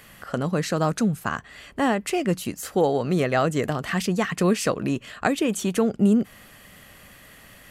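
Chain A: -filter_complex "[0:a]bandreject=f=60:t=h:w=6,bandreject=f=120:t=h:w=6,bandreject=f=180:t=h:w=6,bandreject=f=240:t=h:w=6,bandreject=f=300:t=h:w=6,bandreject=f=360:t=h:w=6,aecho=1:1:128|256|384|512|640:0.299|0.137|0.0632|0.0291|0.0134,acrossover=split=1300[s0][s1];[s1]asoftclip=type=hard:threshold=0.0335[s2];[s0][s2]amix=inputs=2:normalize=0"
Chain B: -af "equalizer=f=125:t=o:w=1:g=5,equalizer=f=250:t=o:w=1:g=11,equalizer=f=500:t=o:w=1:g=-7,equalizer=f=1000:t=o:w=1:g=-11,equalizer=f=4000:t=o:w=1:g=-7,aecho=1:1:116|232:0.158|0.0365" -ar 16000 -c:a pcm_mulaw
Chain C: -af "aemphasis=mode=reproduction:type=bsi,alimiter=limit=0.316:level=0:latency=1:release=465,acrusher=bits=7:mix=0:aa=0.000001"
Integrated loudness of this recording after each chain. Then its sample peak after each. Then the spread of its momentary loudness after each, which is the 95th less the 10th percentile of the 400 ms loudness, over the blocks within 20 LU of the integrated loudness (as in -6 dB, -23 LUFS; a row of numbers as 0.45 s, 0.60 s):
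-24.5 LUFS, -18.5 LUFS, -22.5 LUFS; -9.0 dBFS, -2.5 dBFS, -10.0 dBFS; 9 LU, 10 LU, 7 LU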